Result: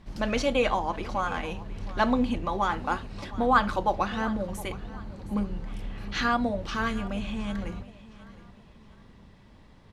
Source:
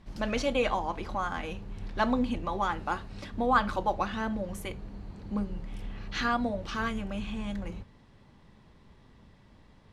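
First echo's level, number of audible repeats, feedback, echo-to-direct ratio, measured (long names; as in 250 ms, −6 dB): −18.0 dB, 2, 35%, −17.5 dB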